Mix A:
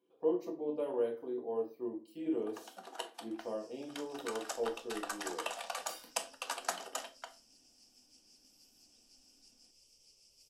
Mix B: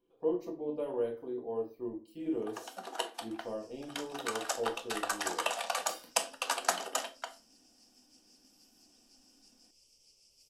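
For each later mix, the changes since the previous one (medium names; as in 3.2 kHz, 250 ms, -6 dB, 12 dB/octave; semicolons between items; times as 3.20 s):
speech: remove high-pass 190 Hz 12 dB/octave; first sound +6.5 dB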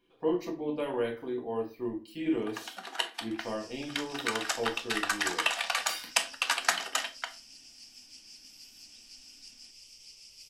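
speech +7.5 dB; second sound +9.0 dB; master: add graphic EQ 500/2000/4000 Hz -7/+10/+5 dB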